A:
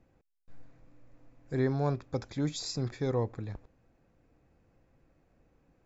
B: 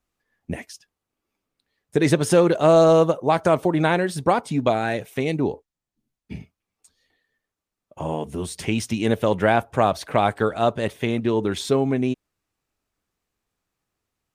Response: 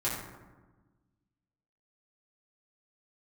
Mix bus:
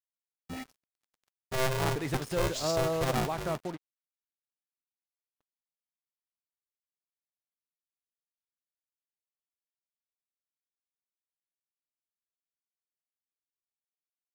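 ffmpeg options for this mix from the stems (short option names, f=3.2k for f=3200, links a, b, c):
-filter_complex "[0:a]aeval=exprs='val(0)*sgn(sin(2*PI*260*n/s))':c=same,volume=1.5dB,asplit=3[a][b][c];[b]volume=-19dB[d];[1:a]agate=range=-33dB:threshold=-38dB:ratio=3:detection=peak,highshelf=f=5.3k:g=-7.5,volume=-13.5dB[e];[c]apad=whole_len=632427[f];[e][f]sidechaingate=range=-33dB:threshold=-58dB:ratio=16:detection=peak[g];[d]aecho=0:1:176:1[h];[a][g][h]amix=inputs=3:normalize=0,equalizer=f=390:w=0.64:g=-3.5,acrusher=bits=6:mix=0:aa=0.5"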